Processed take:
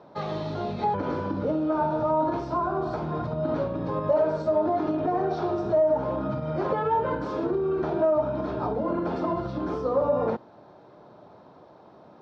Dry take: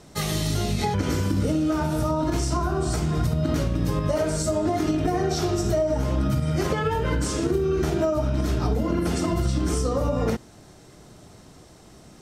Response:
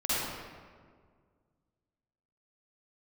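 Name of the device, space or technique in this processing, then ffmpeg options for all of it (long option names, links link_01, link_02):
overdrive pedal into a guitar cabinet: -filter_complex "[0:a]asplit=2[link_01][link_02];[link_02]highpass=frequency=720:poles=1,volume=13dB,asoftclip=type=tanh:threshold=-10.5dB[link_03];[link_01][link_03]amix=inputs=2:normalize=0,lowpass=frequency=1000:poles=1,volume=-6dB,highpass=110,equalizer=frequency=570:width_type=q:width=4:gain=6,equalizer=frequency=930:width_type=q:width=4:gain=7,equalizer=frequency=2000:width_type=q:width=4:gain=-9,equalizer=frequency=2900:width_type=q:width=4:gain=-8,lowpass=frequency=4000:width=0.5412,lowpass=frequency=4000:width=1.3066,volume=-4dB"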